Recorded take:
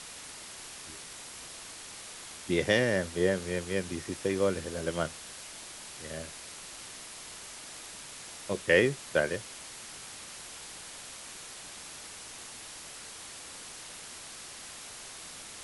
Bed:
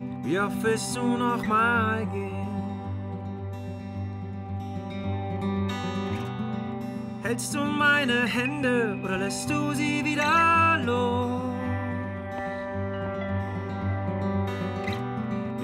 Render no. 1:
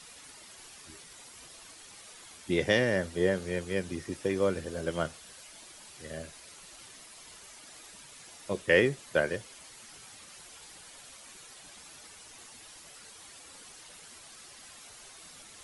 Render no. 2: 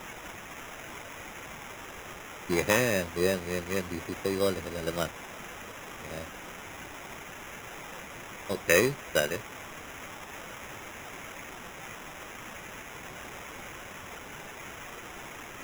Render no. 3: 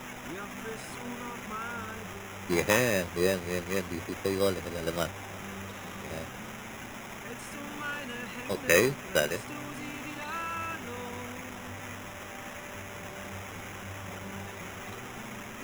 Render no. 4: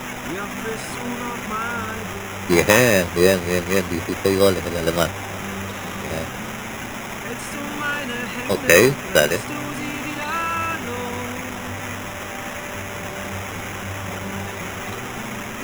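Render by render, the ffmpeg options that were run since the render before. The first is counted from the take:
ffmpeg -i in.wav -af "afftdn=noise_reduction=9:noise_floor=-46" out.wav
ffmpeg -i in.wav -af "crystalizer=i=2:c=0,acrusher=samples=10:mix=1:aa=0.000001" out.wav
ffmpeg -i in.wav -i bed.wav -filter_complex "[1:a]volume=-16dB[link_01];[0:a][link_01]amix=inputs=2:normalize=0" out.wav
ffmpeg -i in.wav -af "volume=11.5dB,alimiter=limit=-1dB:level=0:latency=1" out.wav

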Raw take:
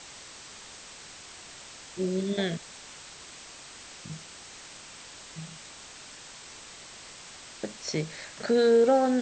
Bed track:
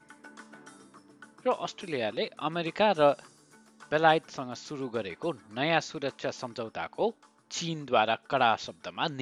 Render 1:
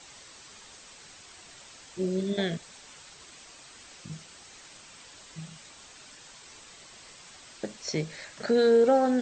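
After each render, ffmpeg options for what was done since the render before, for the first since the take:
ffmpeg -i in.wav -af "afftdn=noise_reduction=6:noise_floor=-47" out.wav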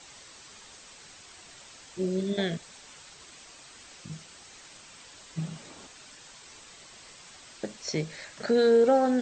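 ffmpeg -i in.wav -filter_complex "[0:a]asettb=1/sr,asplit=3[link_01][link_02][link_03];[link_01]atrim=end=5.374[link_04];[link_02]atrim=start=5.37:end=5.87,asetpts=PTS-STARTPTS,afade=type=in:duration=0.004:curve=qsin,afade=type=out:start_time=0.496:duration=0.004:curve=qsin,equalizer=frequency=290:width_type=o:width=2.9:gain=11.5[link_05];[link_03]atrim=start=5.866[link_06];[link_04][link_05]acrossfade=duration=0.004:curve1=hsin:curve2=qsin[link_07];[link_07][link_06]acrossfade=duration=0.004:curve1=qsin:curve2=hsin" out.wav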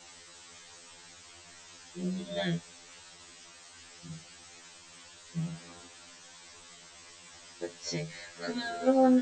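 ffmpeg -i in.wav -af "afftfilt=real='re*2*eq(mod(b,4),0)':imag='im*2*eq(mod(b,4),0)':win_size=2048:overlap=0.75" out.wav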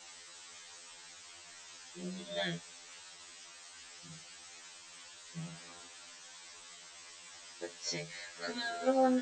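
ffmpeg -i in.wav -af "lowshelf=frequency=420:gain=-11" out.wav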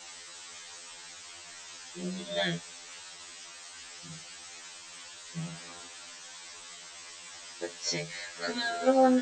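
ffmpeg -i in.wav -af "volume=6dB" out.wav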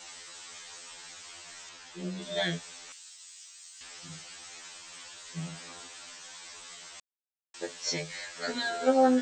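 ffmpeg -i in.wav -filter_complex "[0:a]asettb=1/sr,asplit=3[link_01][link_02][link_03];[link_01]atrim=end=1.694[link_04];[link_02]atrim=start=1.69:end=2.22,asetpts=PTS-STARTPTS,afade=type=in:duration=0.004:curve=qsin,afade=type=out:start_time=0.526:duration=0.004:curve=qsin,highshelf=frequency=6800:gain=-11[link_05];[link_03]atrim=start=2.216[link_06];[link_04][link_05]acrossfade=duration=0.004:curve1=hsin:curve2=qsin[link_07];[link_07][link_06]acrossfade=duration=0.004:curve1=qsin:curve2=hsin,asettb=1/sr,asplit=3[link_08][link_09][link_10];[link_08]atrim=end=2.924[link_11];[link_09]atrim=start=2.92:end=3.81,asetpts=PTS-STARTPTS,afade=type=in:duration=0.004:curve=qsin,afade=type=out:start_time=0.886:duration=0.004:curve=qsin,aderivative[link_12];[link_10]atrim=start=3.806[link_13];[link_11][link_12]acrossfade=duration=0.004:curve1=hsin:curve2=qsin[link_14];[link_14][link_13]acrossfade=duration=0.004:curve1=qsin:curve2=hsin,asplit=3[link_15][link_16][link_17];[link_15]atrim=end=7,asetpts=PTS-STARTPTS,afade=type=out:start_time=6.996:duration=0.004:curve=hsin[link_18];[link_16]atrim=start=7:end=7.54,asetpts=PTS-STARTPTS,volume=0[link_19];[link_17]atrim=start=7.54,asetpts=PTS-STARTPTS,afade=type=in:duration=0.004:curve=hsin[link_20];[link_18][link_19][link_20]concat=n=3:v=0:a=1" out.wav

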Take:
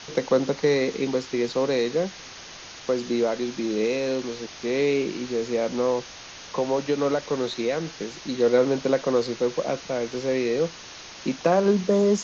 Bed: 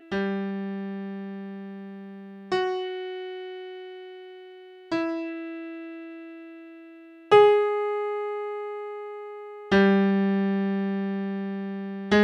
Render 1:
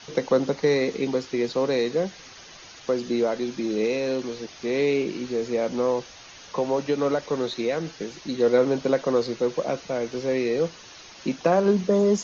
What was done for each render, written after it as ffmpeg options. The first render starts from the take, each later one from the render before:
ffmpeg -i in.wav -af "afftdn=noise_reduction=7:noise_floor=-42" out.wav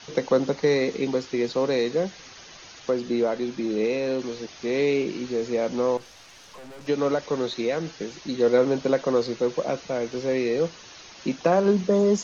ffmpeg -i in.wav -filter_complex "[0:a]asettb=1/sr,asplit=3[link_01][link_02][link_03];[link_01]atrim=end=2.904[link_04];[link_02]atrim=start=2.9:end=4.2,asetpts=PTS-STARTPTS,afade=type=in:duration=0.004:curve=qsin,afade=type=out:start_time=1.296:duration=0.004:curve=qsin,highshelf=frequency=5500:gain=-7[link_05];[link_03]atrim=start=4.196[link_06];[link_04][link_05]acrossfade=duration=0.004:curve1=hsin:curve2=qsin[link_07];[link_07][link_06]acrossfade=duration=0.004:curve1=qsin:curve2=hsin,asettb=1/sr,asplit=3[link_08][link_09][link_10];[link_08]atrim=end=5.974[link_11];[link_09]atrim=start=5.97:end=6.87,asetpts=PTS-STARTPTS,afade=type=in:duration=0.004:curve=qsin,afade=type=out:start_time=0.896:duration=0.004:curve=qsin,aeval=exprs='(tanh(126*val(0)+0.55)-tanh(0.55))/126':channel_layout=same[link_12];[link_10]atrim=start=6.866[link_13];[link_11][link_12]acrossfade=duration=0.004:curve1=hsin:curve2=qsin[link_14];[link_14][link_13]acrossfade=duration=0.004:curve1=qsin:curve2=hsin" out.wav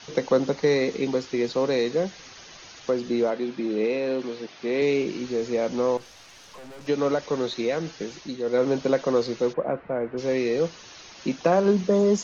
ffmpeg -i in.wav -filter_complex "[0:a]asettb=1/sr,asplit=3[link_01][link_02][link_03];[link_01]atrim=end=3.304[link_04];[link_02]atrim=start=3.3:end=4.82,asetpts=PTS-STARTPTS,afade=type=in:duration=0.004:curve=qsin,afade=type=out:start_time=1.516:duration=0.004:curve=qsin,highpass=150,lowpass=4300[link_05];[link_03]atrim=start=4.816[link_06];[link_04][link_05]acrossfade=duration=0.004:curve1=hsin:curve2=qsin[link_07];[link_07][link_06]acrossfade=duration=0.004:curve1=qsin:curve2=hsin,asplit=3[link_08][link_09][link_10];[link_08]afade=type=out:start_time=9.52:duration=0.02[link_11];[link_09]lowpass=frequency=1900:width=0.5412,lowpass=frequency=1900:width=1.3066,afade=type=in:start_time=9.52:duration=0.02,afade=type=out:start_time=10.17:duration=0.02[link_12];[link_10]afade=type=in:start_time=10.17:duration=0.02[link_13];[link_11][link_12][link_13]amix=inputs=3:normalize=0,asplit=3[link_14][link_15][link_16];[link_14]atrim=end=8.42,asetpts=PTS-STARTPTS,afade=type=out:start_time=8.16:duration=0.26:silence=0.398107[link_17];[link_15]atrim=start=8.42:end=8.44,asetpts=PTS-STARTPTS,volume=-8dB[link_18];[link_16]atrim=start=8.44,asetpts=PTS-STARTPTS,afade=type=in:duration=0.26:silence=0.398107[link_19];[link_17][link_18][link_19]concat=n=3:v=0:a=1" out.wav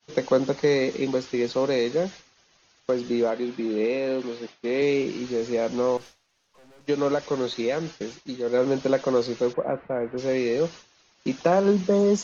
ffmpeg -i in.wav -af "agate=range=-33dB:threshold=-34dB:ratio=3:detection=peak" out.wav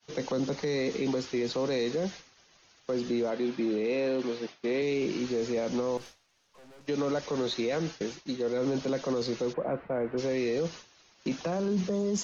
ffmpeg -i in.wav -filter_complex "[0:a]acrossover=split=300|3000[link_01][link_02][link_03];[link_02]acompressor=threshold=-25dB:ratio=6[link_04];[link_01][link_04][link_03]amix=inputs=3:normalize=0,alimiter=limit=-22dB:level=0:latency=1:release=10" out.wav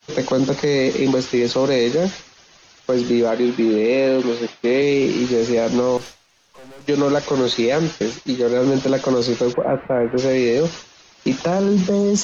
ffmpeg -i in.wav -af "volume=12dB" out.wav

